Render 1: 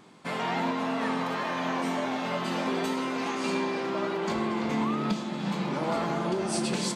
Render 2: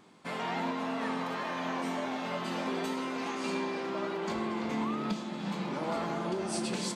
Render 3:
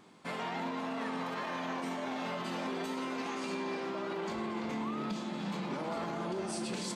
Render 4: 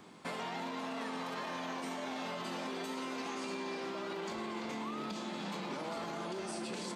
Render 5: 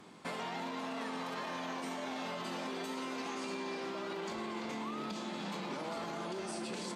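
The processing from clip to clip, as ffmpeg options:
ffmpeg -i in.wav -af "equalizer=frequency=140:width_type=o:width=0.24:gain=-5.5,volume=-4.5dB" out.wav
ffmpeg -i in.wav -af "alimiter=level_in=4.5dB:limit=-24dB:level=0:latency=1:release=40,volume=-4.5dB" out.wav
ffmpeg -i in.wav -filter_complex "[0:a]acrossover=split=250|1400|3200[link_01][link_02][link_03][link_04];[link_01]acompressor=threshold=-55dB:ratio=4[link_05];[link_02]acompressor=threshold=-44dB:ratio=4[link_06];[link_03]acompressor=threshold=-54dB:ratio=4[link_07];[link_04]acompressor=threshold=-52dB:ratio=4[link_08];[link_05][link_06][link_07][link_08]amix=inputs=4:normalize=0,volume=3.5dB" out.wav
ffmpeg -i in.wav -af "aresample=32000,aresample=44100" out.wav

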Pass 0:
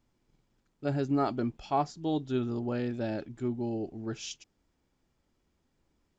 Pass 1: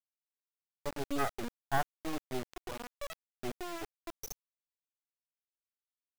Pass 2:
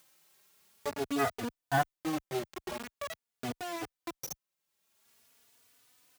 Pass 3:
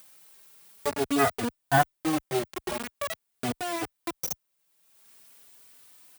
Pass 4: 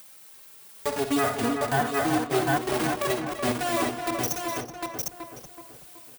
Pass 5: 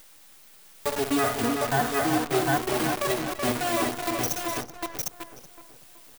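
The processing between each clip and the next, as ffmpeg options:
ffmpeg -i in.wav -af "aemphasis=mode=production:type=riaa,afftfilt=real='re*gte(hypot(re,im),0.1)':imag='im*gte(hypot(re,im),0.1)':win_size=1024:overlap=0.75,acrusher=bits=4:dc=4:mix=0:aa=0.000001,volume=3dB" out.wav
ffmpeg -i in.wav -filter_complex "[0:a]highpass=80,asplit=2[link_01][link_02];[link_02]acompressor=mode=upward:threshold=-37dB:ratio=2.5,volume=0.5dB[link_03];[link_01][link_03]amix=inputs=2:normalize=0,asplit=2[link_04][link_05];[link_05]adelay=3.4,afreqshift=0.47[link_06];[link_04][link_06]amix=inputs=2:normalize=1" out.wav
ffmpeg -i in.wav -af "aexciter=amount=1.9:drive=1.5:freq=8600,volume=6.5dB" out.wav
ffmpeg -i in.wav -filter_complex "[0:a]asplit=2[link_01][link_02];[link_02]aecho=0:1:52|61|84|251|291|754:0.266|0.282|0.188|0.251|0.112|0.596[link_03];[link_01][link_03]amix=inputs=2:normalize=0,alimiter=limit=-19dB:level=0:latency=1:release=303,asplit=2[link_04][link_05];[link_05]adelay=376,lowpass=frequency=1900:poles=1,volume=-5dB,asplit=2[link_06][link_07];[link_07]adelay=376,lowpass=frequency=1900:poles=1,volume=0.49,asplit=2[link_08][link_09];[link_09]adelay=376,lowpass=frequency=1900:poles=1,volume=0.49,asplit=2[link_10][link_11];[link_11]adelay=376,lowpass=frequency=1900:poles=1,volume=0.49,asplit=2[link_12][link_13];[link_13]adelay=376,lowpass=frequency=1900:poles=1,volume=0.49,asplit=2[link_14][link_15];[link_15]adelay=376,lowpass=frequency=1900:poles=1,volume=0.49[link_16];[link_06][link_08][link_10][link_12][link_14][link_16]amix=inputs=6:normalize=0[link_17];[link_04][link_17]amix=inputs=2:normalize=0,volume=4.5dB" out.wav
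ffmpeg -i in.wav -af "acrusher=bits=6:dc=4:mix=0:aa=0.000001" out.wav

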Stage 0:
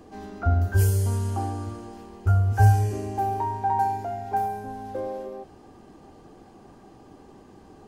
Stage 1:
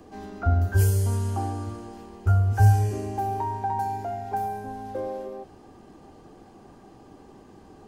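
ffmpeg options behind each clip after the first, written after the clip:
ffmpeg -i in.wav -filter_complex "[0:a]acrossover=split=320|3000[link_01][link_02][link_03];[link_02]acompressor=threshold=-25dB:ratio=6[link_04];[link_01][link_04][link_03]amix=inputs=3:normalize=0" out.wav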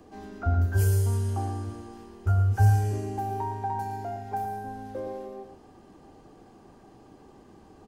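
ffmpeg -i in.wav -af "aecho=1:1:115:0.376,volume=-3.5dB" out.wav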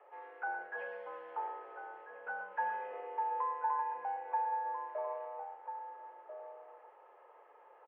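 ffmpeg -i in.wav -filter_complex "[0:a]asplit=2[link_01][link_02];[link_02]adelay=1341,volume=-8dB,highshelf=frequency=4000:gain=-30.2[link_03];[link_01][link_03]amix=inputs=2:normalize=0,highpass=frequency=470:width_type=q:width=0.5412,highpass=frequency=470:width_type=q:width=1.307,lowpass=frequency=2400:width_type=q:width=0.5176,lowpass=frequency=2400:width_type=q:width=0.7071,lowpass=frequency=2400:width_type=q:width=1.932,afreqshift=95,volume=-2.5dB" out.wav

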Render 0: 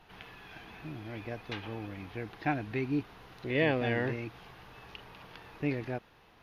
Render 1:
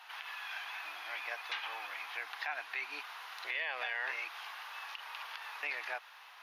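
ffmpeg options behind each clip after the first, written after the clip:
ffmpeg -i in.wav -filter_complex "[0:a]highpass=frequency=900:width=0.5412,highpass=frequency=900:width=1.3066,asplit=2[link_01][link_02];[link_02]acompressor=threshold=-47dB:ratio=6,volume=-1.5dB[link_03];[link_01][link_03]amix=inputs=2:normalize=0,alimiter=level_in=6dB:limit=-24dB:level=0:latency=1:release=77,volume=-6dB,volume=4dB" out.wav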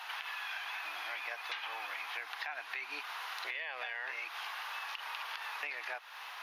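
ffmpeg -i in.wav -af "acompressor=threshold=-48dB:ratio=4,volume=9dB" out.wav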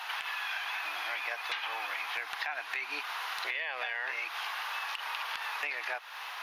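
ffmpeg -i in.wav -af "volume=28dB,asoftclip=hard,volume=-28dB,volume=5dB" out.wav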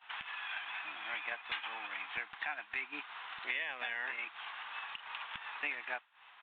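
ffmpeg -i in.wav -af "aresample=8000,aresample=44100,agate=range=-33dB:threshold=-28dB:ratio=3:detection=peak,lowshelf=frequency=310:width_type=q:width=1.5:gain=13.5,volume=4dB" out.wav

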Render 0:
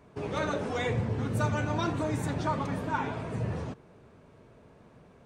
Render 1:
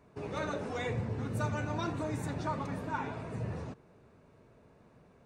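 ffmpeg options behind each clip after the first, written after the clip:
ffmpeg -i in.wav -af "bandreject=frequency=3200:width=11,volume=-5dB" out.wav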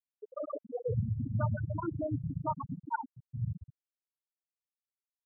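ffmpeg -i in.wav -af "afftfilt=real='re*gte(hypot(re,im),0.112)':imag='im*gte(hypot(re,im),0.112)':win_size=1024:overlap=0.75,volume=4.5dB" out.wav

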